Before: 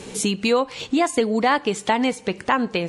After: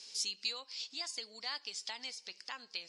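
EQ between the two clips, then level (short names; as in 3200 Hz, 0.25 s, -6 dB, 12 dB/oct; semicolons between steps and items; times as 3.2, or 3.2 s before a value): band-pass 5000 Hz, Q 8; +4.5 dB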